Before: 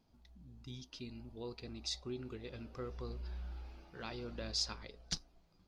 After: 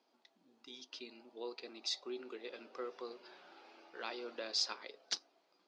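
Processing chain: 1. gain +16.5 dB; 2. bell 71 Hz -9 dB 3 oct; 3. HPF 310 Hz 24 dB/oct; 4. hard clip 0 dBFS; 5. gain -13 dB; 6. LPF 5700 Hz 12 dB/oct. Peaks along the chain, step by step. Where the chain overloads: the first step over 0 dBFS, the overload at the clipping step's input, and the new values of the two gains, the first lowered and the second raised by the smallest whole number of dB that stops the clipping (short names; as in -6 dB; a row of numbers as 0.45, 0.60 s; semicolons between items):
-4.0, -4.5, -4.5, -4.5, -17.5, -19.5 dBFS; no overload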